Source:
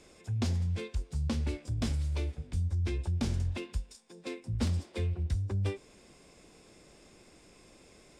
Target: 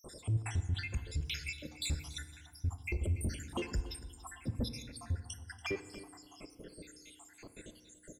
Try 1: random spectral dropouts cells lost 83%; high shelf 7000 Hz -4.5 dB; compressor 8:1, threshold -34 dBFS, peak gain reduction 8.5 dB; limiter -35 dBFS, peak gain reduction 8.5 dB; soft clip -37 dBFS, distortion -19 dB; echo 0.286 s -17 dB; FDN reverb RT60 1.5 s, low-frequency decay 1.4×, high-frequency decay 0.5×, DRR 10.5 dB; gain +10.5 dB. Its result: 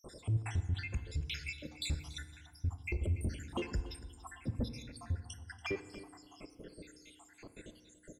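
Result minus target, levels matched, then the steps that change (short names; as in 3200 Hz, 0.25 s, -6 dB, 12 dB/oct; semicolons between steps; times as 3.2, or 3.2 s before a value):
compressor: peak gain reduction +8.5 dB; 8000 Hz band -5.0 dB
change: high shelf 7000 Hz +5.5 dB; remove: compressor 8:1, threshold -34 dBFS, peak gain reduction 8.5 dB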